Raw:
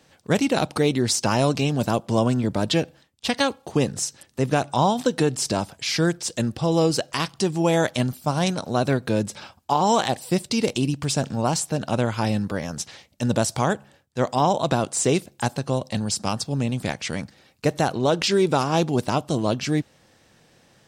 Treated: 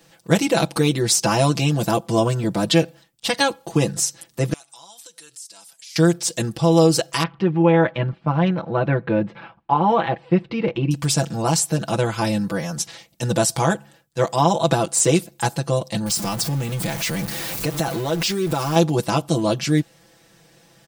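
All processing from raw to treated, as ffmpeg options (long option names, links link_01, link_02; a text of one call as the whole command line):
ffmpeg -i in.wav -filter_complex "[0:a]asettb=1/sr,asplit=3[link_01][link_02][link_03];[link_01]atrim=end=4.534[link_04];[link_02]atrim=start=4.53:end=5.96,asetpts=PTS-STARTPTS,afade=type=in:duration=0.004:curve=qsin,afade=type=out:start_time=1.426:duration=0.004:curve=qsin,lowpass=frequency=12000:width=0.5412,lowpass=frequency=12000:width=1.3066,aderivative,acompressor=threshold=-47dB:ratio=3:attack=3.2:release=140:knee=1:detection=peak[link_05];[link_03]atrim=start=5.956[link_06];[link_04][link_05]acrossfade=duration=0.004:curve1=hsin:curve2=qsin[link_07];[link_07][link_06]acrossfade=duration=0.004:curve1=qsin:curve2=hsin,asettb=1/sr,asplit=3[link_08][link_09][link_10];[link_08]atrim=end=7.234[link_11];[link_09]atrim=start=7.23:end=10.91,asetpts=PTS-STARTPTS,afade=type=in:duration=0.004:curve=qsin,afade=type=out:start_time=3.676:duration=0.004:curve=qsin,lowpass=frequency=2500:width=0.5412,lowpass=frequency=2500:width=1.3066,bandreject=frequency=670:width=18[link_12];[link_10]atrim=start=10.906[link_13];[link_11][link_12]acrossfade=duration=0.004:curve1=hsin:curve2=qsin[link_14];[link_14][link_13]acrossfade=duration=0.004:curve1=qsin:curve2=hsin,asettb=1/sr,asplit=3[link_15][link_16][link_17];[link_15]atrim=end=16.064[link_18];[link_16]atrim=start=16.06:end=18.76,asetpts=PTS-STARTPTS,afade=type=in:duration=0.004:curve=qsin,afade=type=out:start_time=2.696:duration=0.004:curve=qsin,aeval=exprs='val(0)+0.5*0.0398*sgn(val(0))':channel_layout=same,acompressor=threshold=-24dB:ratio=2.5:attack=3.2:release=140:knee=1:detection=peak[link_19];[link_17]atrim=start=18.756[link_20];[link_18][link_19]acrossfade=duration=0.004:curve1=hsin:curve2=qsin[link_21];[link_21][link_20]acrossfade=duration=0.004:curve1=qsin:curve2=hsin,highshelf=frequency=11000:gain=11,aecho=1:1:6:0.93" out.wav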